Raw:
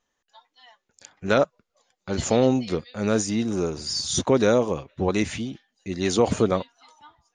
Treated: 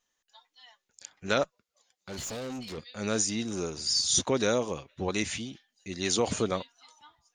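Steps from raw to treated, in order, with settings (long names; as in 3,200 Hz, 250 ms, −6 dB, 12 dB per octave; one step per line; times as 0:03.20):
high-shelf EQ 2,000 Hz +11 dB
0:01.43–0:02.78: tube saturation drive 26 dB, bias 0.35
level −8.5 dB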